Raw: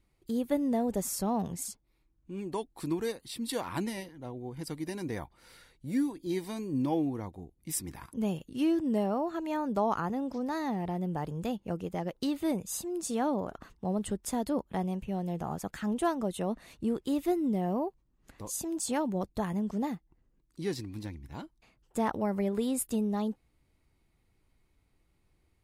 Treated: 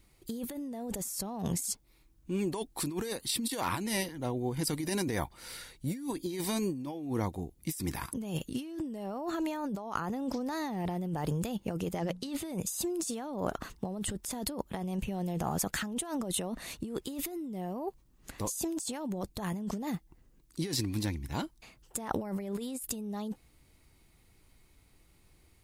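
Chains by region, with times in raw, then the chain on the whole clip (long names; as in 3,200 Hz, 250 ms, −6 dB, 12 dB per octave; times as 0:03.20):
0:11.97–0:12.51: low-pass filter 11,000 Hz + mains-hum notches 60/120/180/240 Hz
whole clip: high-shelf EQ 3,400 Hz +8.5 dB; compressor whose output falls as the input rises −37 dBFS, ratio −1; level +2 dB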